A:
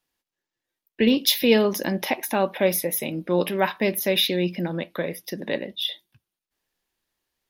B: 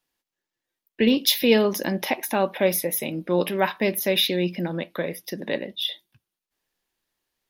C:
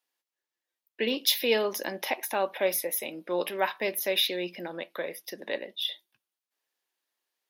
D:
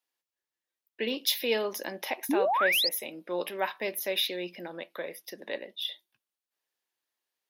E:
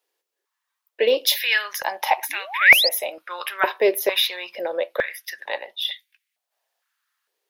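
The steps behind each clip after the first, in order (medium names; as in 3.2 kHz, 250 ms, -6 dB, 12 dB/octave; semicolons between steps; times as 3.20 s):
peaking EQ 60 Hz -3.5 dB 1.5 oct
high-pass 420 Hz 12 dB/octave; trim -4 dB
painted sound rise, 2.29–2.89 s, 250–5300 Hz -23 dBFS; trim -3 dB
step-sequenced high-pass 2.2 Hz 420–2100 Hz; trim +7.5 dB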